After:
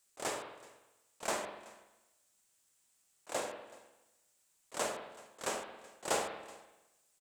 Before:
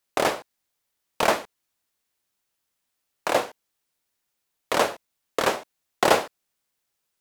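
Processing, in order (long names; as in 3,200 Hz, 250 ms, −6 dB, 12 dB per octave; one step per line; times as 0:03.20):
parametric band 7,800 Hz +14 dB 0.76 octaves
volume swells 536 ms
on a send: single-tap delay 378 ms −22 dB
on the sum: spring reverb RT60 1 s, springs 44/49 ms, chirp 40 ms, DRR 4.5 dB
level −1 dB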